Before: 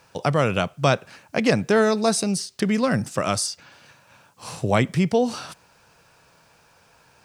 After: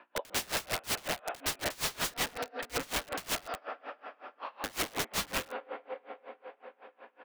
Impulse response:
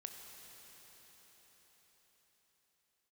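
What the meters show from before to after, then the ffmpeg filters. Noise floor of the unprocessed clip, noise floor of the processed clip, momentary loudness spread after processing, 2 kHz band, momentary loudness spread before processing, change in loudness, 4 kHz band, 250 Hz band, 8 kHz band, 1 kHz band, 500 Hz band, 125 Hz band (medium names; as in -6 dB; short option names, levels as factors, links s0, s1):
-58 dBFS, -69 dBFS, 16 LU, -8.0 dB, 12 LU, -13.0 dB, -4.5 dB, -22.5 dB, -6.5 dB, -11.0 dB, -17.5 dB, -23.5 dB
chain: -filter_complex "[0:a]acrossover=split=430 2500:gain=0.141 1 0.251[s0][s1][s2];[s0][s1][s2]amix=inputs=3:normalize=0,asplit=2[s3][s4];[s4]acompressor=threshold=0.0316:ratio=10,volume=0.708[s5];[s3][s5]amix=inputs=2:normalize=0,aeval=exprs='val(0)+0.00224*(sin(2*PI*60*n/s)+sin(2*PI*2*60*n/s)/2+sin(2*PI*3*60*n/s)/3+sin(2*PI*4*60*n/s)/4+sin(2*PI*5*60*n/s)/5)':c=same,highpass=f=220:t=q:w=0.5412,highpass=f=220:t=q:w=1.307,lowpass=f=3500:t=q:w=0.5176,lowpass=f=3500:t=q:w=0.7071,lowpass=f=3500:t=q:w=1.932,afreqshift=56,asplit=2[s6][s7];[s7]adelay=246,lowpass=f=1000:p=1,volume=0.266,asplit=2[s8][s9];[s9]adelay=246,lowpass=f=1000:p=1,volume=0.49,asplit=2[s10][s11];[s11]adelay=246,lowpass=f=1000:p=1,volume=0.49,asplit=2[s12][s13];[s13]adelay=246,lowpass=f=1000:p=1,volume=0.49,asplit=2[s14][s15];[s15]adelay=246,lowpass=f=1000:p=1,volume=0.49[s16];[s6][s8][s10][s12][s14][s16]amix=inputs=6:normalize=0,asplit=2[s17][s18];[1:a]atrim=start_sample=2205,adelay=133[s19];[s18][s19]afir=irnorm=-1:irlink=0,volume=0.75[s20];[s17][s20]amix=inputs=2:normalize=0,aeval=exprs='(mod(15.8*val(0)+1,2)-1)/15.8':c=same,aeval=exprs='val(0)*pow(10,-26*(0.5-0.5*cos(2*PI*5.4*n/s))/20)':c=same"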